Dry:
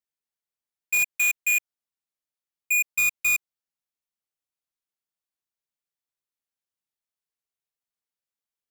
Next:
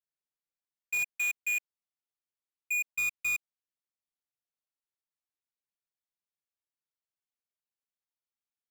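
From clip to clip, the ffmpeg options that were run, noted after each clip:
ffmpeg -i in.wav -af "highshelf=frequency=7800:gain=-8,volume=-7dB" out.wav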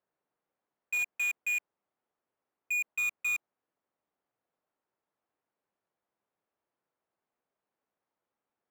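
ffmpeg -i in.wav -filter_complex "[0:a]adynamicsmooth=sensitivity=3:basefreq=790,asplit=2[link_01][link_02];[link_02]highpass=frequency=720:poles=1,volume=29dB,asoftclip=type=tanh:threshold=-29.5dB[link_03];[link_01][link_03]amix=inputs=2:normalize=0,lowpass=frequency=8000:poles=1,volume=-6dB,volume=2.5dB" out.wav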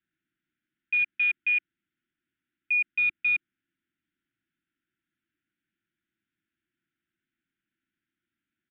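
ffmpeg -i in.wav -af "asuperstop=centerf=700:order=20:qfactor=0.69,aresample=8000,aresample=44100,volume=6.5dB" out.wav

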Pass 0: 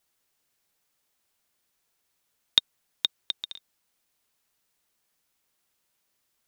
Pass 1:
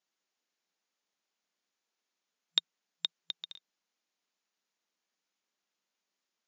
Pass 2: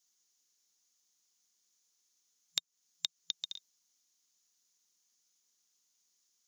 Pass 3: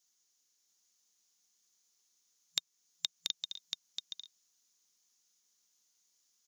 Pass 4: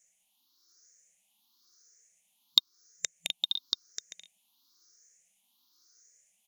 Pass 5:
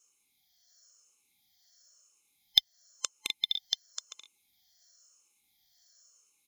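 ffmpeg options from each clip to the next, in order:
ffmpeg -i in.wav -af "afftfilt=real='re*between(b*sr/4096,170,7200)':imag='im*between(b*sr/4096,170,7200)':win_size=4096:overlap=0.75,volume=-7.5dB" out.wav
ffmpeg -i in.wav -af "equalizer=frequency=630:width_type=o:width=0.67:gain=-7,equalizer=frequency=2500:width_type=o:width=0.67:gain=-9,equalizer=frequency=6300:width_type=o:width=0.67:gain=7,acompressor=threshold=-37dB:ratio=6,aexciter=amount=2.8:drive=4.7:freq=2200,volume=-1.5dB" out.wav
ffmpeg -i in.wav -af "aecho=1:1:683:0.596" out.wav
ffmpeg -i in.wav -filter_complex "[0:a]afftfilt=real='re*pow(10,23/40*sin(2*PI*(0.52*log(max(b,1)*sr/1024/100)/log(2)-(0.97)*(pts-256)/sr)))':imag='im*pow(10,23/40*sin(2*PI*(0.52*log(max(b,1)*sr/1024/100)/log(2)-(0.97)*(pts-256)/sr)))':win_size=1024:overlap=0.75,asplit=2[link_01][link_02];[link_02]acrusher=bits=4:mode=log:mix=0:aa=0.000001,volume=-11dB[link_03];[link_01][link_03]amix=inputs=2:normalize=0" out.wav
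ffmpeg -i in.wav -af "afftfilt=real='real(if(between(b,1,1008),(2*floor((b-1)/48)+1)*48-b,b),0)':imag='imag(if(between(b,1,1008),(2*floor((b-1)/48)+1)*48-b,b),0)*if(between(b,1,1008),-1,1)':win_size=2048:overlap=0.75" out.wav

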